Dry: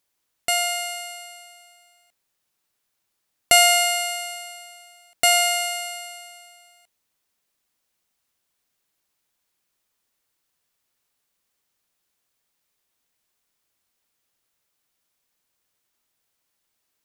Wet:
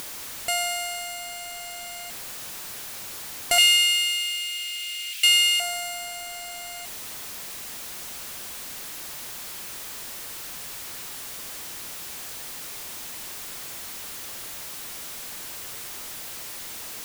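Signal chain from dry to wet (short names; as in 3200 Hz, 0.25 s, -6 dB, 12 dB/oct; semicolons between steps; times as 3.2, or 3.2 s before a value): zero-crossing step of -28.5 dBFS; upward compressor, threshold -31 dBFS; soft clip -9 dBFS, distortion -18 dB; 3.58–5.6 resonant high-pass 2700 Hz, resonance Q 3.5; gain -4.5 dB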